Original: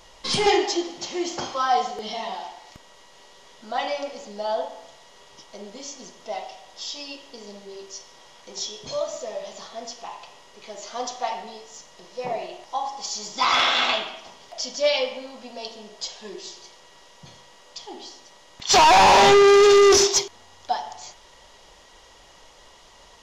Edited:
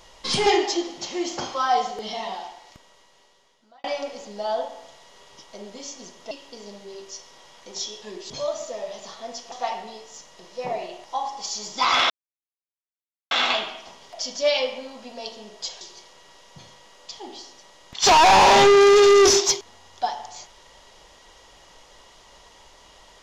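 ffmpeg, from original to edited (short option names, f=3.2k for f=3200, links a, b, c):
-filter_complex "[0:a]asplit=8[a][b][c][d][e][f][g][h];[a]atrim=end=3.84,asetpts=PTS-STARTPTS,afade=t=out:st=2.31:d=1.53[i];[b]atrim=start=3.84:end=6.312,asetpts=PTS-STARTPTS,afade=t=in:d=0.004:c=hsin[j];[c]atrim=start=7.118:end=8.832[k];[d]atrim=start=16.198:end=16.482[l];[e]atrim=start=8.828:end=10.052[m];[f]atrim=start=11.118:end=13.7,asetpts=PTS-STARTPTS,afade=t=out:st=2.578:d=0.004:c=hsin,apad=pad_dur=1.21[n];[g]atrim=start=13.7:end=16.202,asetpts=PTS-STARTPTS,afade=t=in:d=0.004:c=hsin[o];[h]atrim=start=16.478[p];[i][j]concat=n=2:v=0:a=1[q];[q][k]acrossfade=d=0.004:c1=hsin:c2=hsin[r];[r][l]acrossfade=d=0.004:c1=hsin:c2=hsin[s];[s][m]acrossfade=d=0.004:c1=hsin:c2=hsin[t];[n][o]concat=n=2:v=0:a=1[u];[t][u]acrossfade=d=0.004:c1=hsin:c2=hsin[v];[v][p]acrossfade=d=0.004:c1=hsin:c2=hsin"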